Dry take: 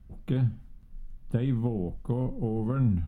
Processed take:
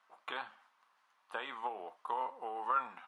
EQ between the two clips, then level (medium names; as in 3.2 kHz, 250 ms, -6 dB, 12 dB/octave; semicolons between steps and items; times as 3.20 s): ladder high-pass 880 Hz, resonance 55%; distance through air 69 m; +15.5 dB